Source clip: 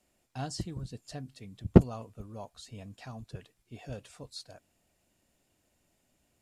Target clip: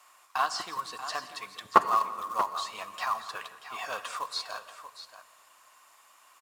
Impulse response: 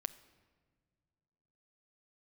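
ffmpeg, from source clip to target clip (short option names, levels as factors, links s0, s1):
-filter_complex "[0:a]highpass=f=1100:t=q:w=11,asplit=2[s0][s1];[s1]acompressor=threshold=0.00631:ratio=6,volume=1.33[s2];[s0][s2]amix=inputs=2:normalize=0,acrusher=bits=4:mode=log:mix=0:aa=0.000001,acrossover=split=5400[s3][s4];[s4]acompressor=threshold=0.00251:ratio=4:attack=1:release=60[s5];[s3][s5]amix=inputs=2:normalize=0,aecho=1:1:171|635:0.141|0.251[s6];[1:a]atrim=start_sample=2205,asetrate=32193,aresample=44100[s7];[s6][s7]afir=irnorm=-1:irlink=0,volume=2.11"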